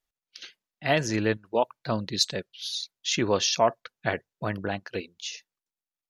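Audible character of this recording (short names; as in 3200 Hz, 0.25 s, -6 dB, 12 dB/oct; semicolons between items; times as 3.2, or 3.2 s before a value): noise floor -94 dBFS; spectral tilt -3.5 dB/oct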